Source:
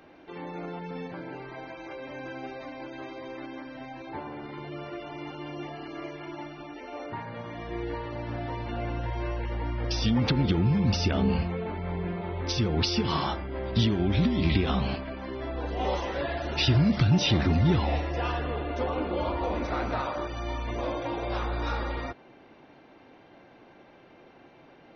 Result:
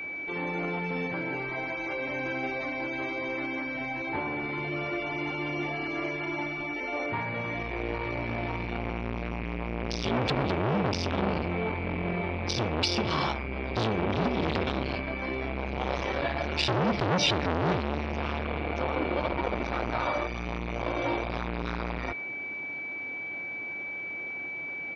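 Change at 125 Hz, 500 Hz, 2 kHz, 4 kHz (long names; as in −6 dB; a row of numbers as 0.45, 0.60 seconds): −5.5, +1.5, +7.0, −1.0 decibels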